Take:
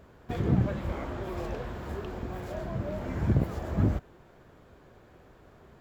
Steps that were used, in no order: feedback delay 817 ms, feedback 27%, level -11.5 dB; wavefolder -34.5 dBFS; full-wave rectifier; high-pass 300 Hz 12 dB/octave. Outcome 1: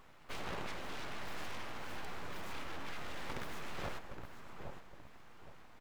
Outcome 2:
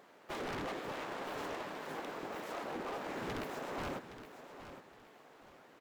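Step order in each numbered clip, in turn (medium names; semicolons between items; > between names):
high-pass > full-wave rectifier > feedback delay > wavefolder; full-wave rectifier > high-pass > wavefolder > feedback delay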